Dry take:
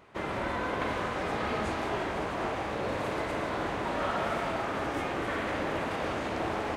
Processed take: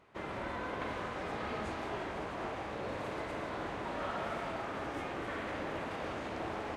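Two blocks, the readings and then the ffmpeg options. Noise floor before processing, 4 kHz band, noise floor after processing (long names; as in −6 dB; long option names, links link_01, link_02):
−34 dBFS, −7.5 dB, −41 dBFS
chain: -af "highshelf=frequency=11000:gain=-6,volume=-7dB"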